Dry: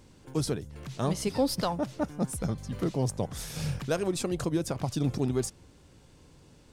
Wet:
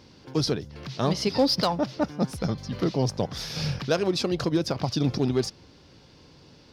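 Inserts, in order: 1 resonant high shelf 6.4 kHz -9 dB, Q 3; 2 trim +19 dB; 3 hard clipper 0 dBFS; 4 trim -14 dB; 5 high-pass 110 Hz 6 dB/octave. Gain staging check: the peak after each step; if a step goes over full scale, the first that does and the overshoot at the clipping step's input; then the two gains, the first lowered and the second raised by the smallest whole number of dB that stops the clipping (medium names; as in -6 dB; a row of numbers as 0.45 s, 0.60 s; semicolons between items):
-14.5 dBFS, +4.5 dBFS, 0.0 dBFS, -14.0 dBFS, -11.5 dBFS; step 2, 4.5 dB; step 2 +14 dB, step 4 -9 dB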